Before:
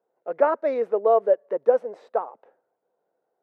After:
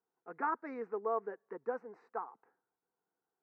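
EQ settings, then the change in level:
high-frequency loss of the air 130 metres
phaser with its sweep stopped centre 1,400 Hz, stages 4
−5.5 dB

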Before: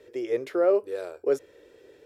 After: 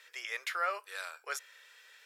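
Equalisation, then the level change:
high-pass filter 1,200 Hz 24 dB per octave
+7.5 dB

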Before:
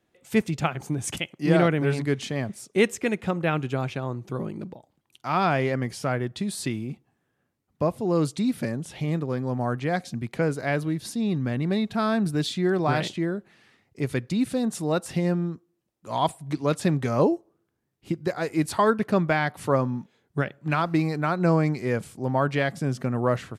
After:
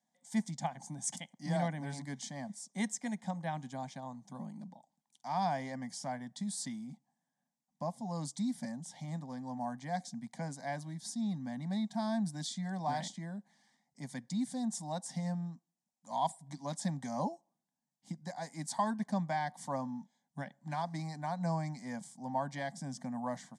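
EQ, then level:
loudspeaker in its box 260–8,500 Hz, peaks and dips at 310 Hz −6 dB, 610 Hz −7 dB, 1,100 Hz −4 dB, 4,200 Hz −5 dB
phaser with its sweep stopped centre 360 Hz, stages 6
phaser with its sweep stopped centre 1,100 Hz, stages 4
0.0 dB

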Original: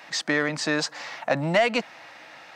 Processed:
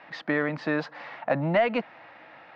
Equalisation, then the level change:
low-pass filter 3,100 Hz 6 dB per octave
high-frequency loss of the air 320 metres
0.0 dB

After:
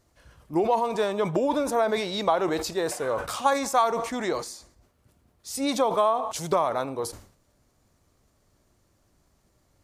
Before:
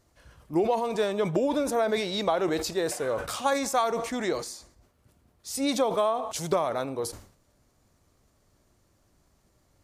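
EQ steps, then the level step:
dynamic equaliser 990 Hz, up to +6 dB, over −41 dBFS, Q 1.7
0.0 dB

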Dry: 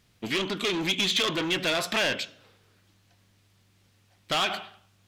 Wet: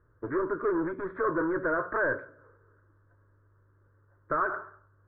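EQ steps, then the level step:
Chebyshev low-pass filter 1,600 Hz, order 5
phaser with its sweep stopped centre 760 Hz, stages 6
+4.5 dB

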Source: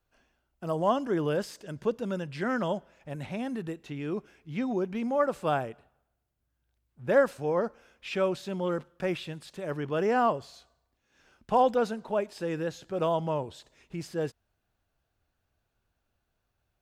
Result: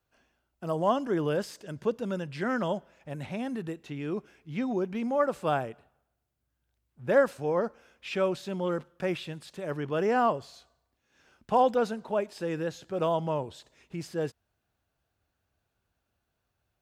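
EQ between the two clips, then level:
high-pass filter 51 Hz
0.0 dB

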